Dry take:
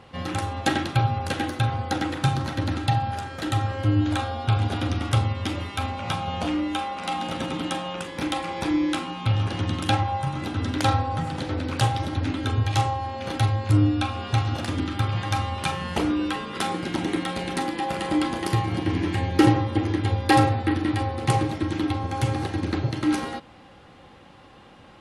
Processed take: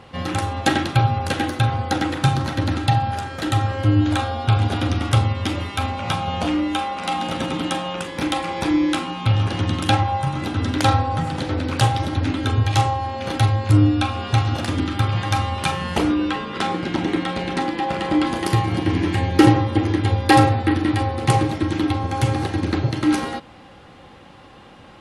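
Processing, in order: 16.14–18.27 air absorption 76 m; gain +4.5 dB

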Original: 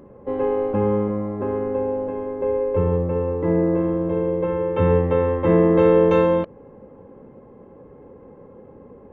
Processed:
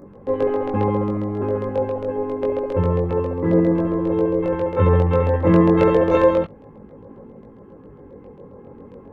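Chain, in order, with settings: LFO notch square 7.4 Hz 580–3000 Hz; chorus voices 2, 0.28 Hz, delay 20 ms, depth 1.9 ms; gain +6 dB

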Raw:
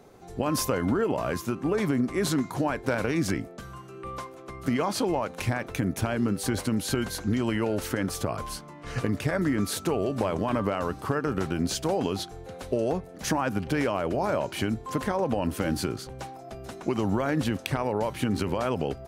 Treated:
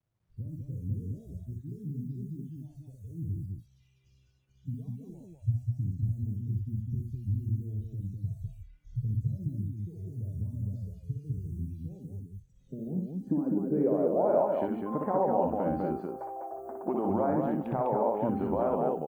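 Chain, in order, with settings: 14.12–14.97 high shelf 5900 Hz -> 9300 Hz +12 dB; low-pass sweep 110 Hz -> 780 Hz, 12.31–14.45; 2.56–3.13 compressor 12:1, threshold -29 dBFS, peak gain reduction 5 dB; requantised 10-bit, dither none; 11.99–12.56 bell 1100 Hz -7.5 dB 1.7 oct; spectral noise reduction 20 dB; loudspeakers at several distances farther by 21 m -4 dB, 69 m -3 dB; gain -6 dB

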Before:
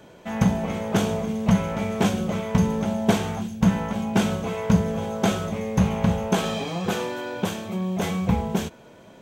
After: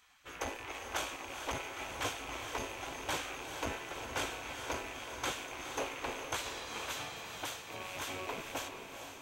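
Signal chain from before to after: rattling part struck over -28 dBFS, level -27 dBFS; de-hum 110 Hz, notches 35; spectral gate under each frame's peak -15 dB weak; diffused feedback echo 0.451 s, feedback 57%, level -7 dB; core saturation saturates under 560 Hz; gain -6.5 dB

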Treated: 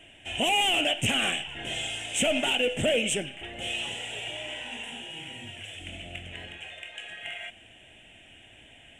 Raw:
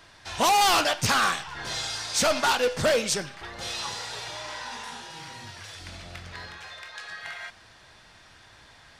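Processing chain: EQ curve 170 Hz 0 dB, 270 Hz +7 dB, 470 Hz 0 dB, 700 Hz +3 dB, 1100 Hz -18 dB, 3000 Hz +13 dB, 4500 Hz -29 dB, 7800 Hz +4 dB, 13000 Hz -8 dB; limiter -15.5 dBFS, peak gain reduction 7.5 dB; gain -1 dB

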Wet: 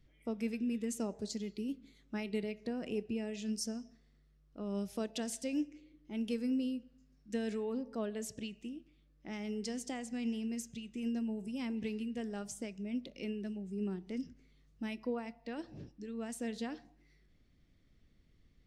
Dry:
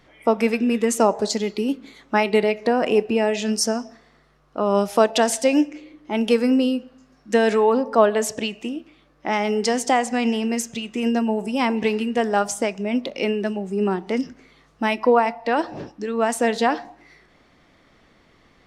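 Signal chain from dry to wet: passive tone stack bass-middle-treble 10-0-1; gain +3.5 dB

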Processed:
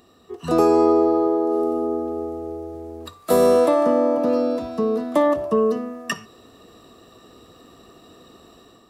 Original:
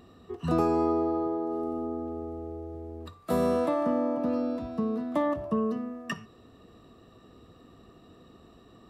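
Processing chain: dynamic EQ 440 Hz, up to +6 dB, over -39 dBFS, Q 1.5; AGC gain up to 7 dB; tone controls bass -8 dB, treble +8 dB; gain +1 dB

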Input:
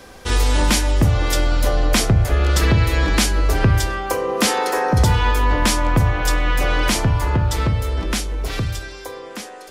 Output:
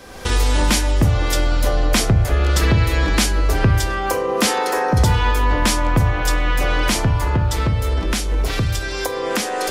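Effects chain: recorder AGC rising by 34 dB/s

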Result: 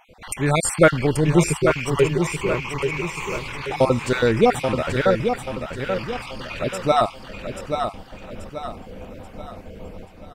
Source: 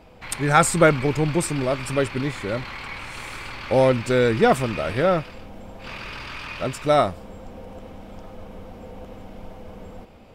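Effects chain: random spectral dropouts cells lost 37%; 1.27–3.38 ripple EQ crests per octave 0.75, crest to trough 14 dB; feedback echo 0.833 s, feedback 42%, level -6.5 dB; gain +2 dB

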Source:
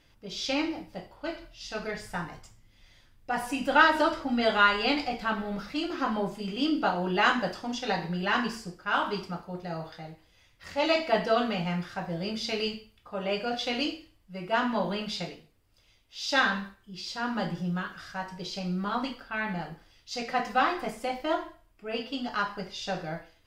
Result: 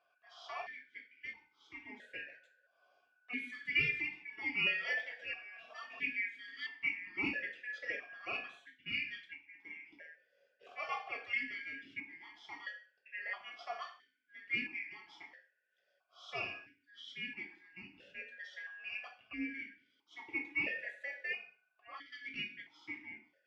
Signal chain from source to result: four-band scrambler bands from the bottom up 2143; 4.53–7.1 comb 4.4 ms, depth 77%; vowel sequencer 1.5 Hz

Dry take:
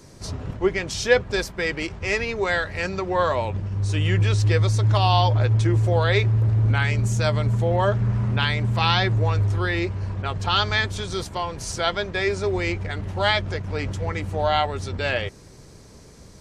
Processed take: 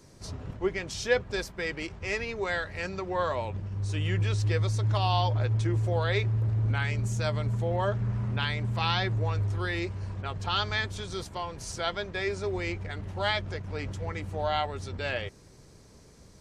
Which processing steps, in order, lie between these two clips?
9.59–10.21 high shelf 5700 Hz +7.5 dB; gain -7.5 dB

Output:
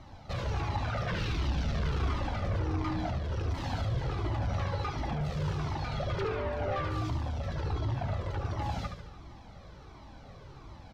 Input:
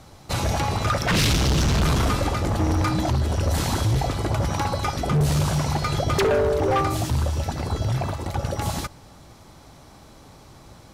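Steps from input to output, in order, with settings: high shelf 6900 Hz +8.5 dB; in parallel at +2 dB: compressor, threshold -28 dBFS, peak gain reduction 10.5 dB; on the sum: overloaded stage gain 21 dB; air absorption 230 m; on a send: feedback echo 73 ms, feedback 52%, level -6.5 dB; on the sum: cascading flanger falling 1.4 Hz; gain -6 dB

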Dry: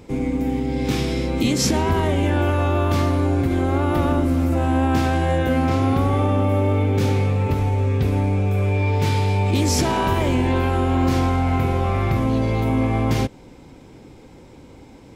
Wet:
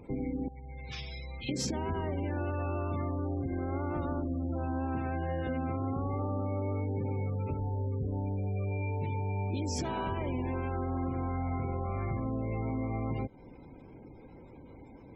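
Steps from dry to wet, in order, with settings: spectral gate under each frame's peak -25 dB strong; 0.48–1.49 passive tone stack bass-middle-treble 10-0-10; compressor 3:1, threshold -26 dBFS, peak gain reduction 9 dB; gain -6.5 dB

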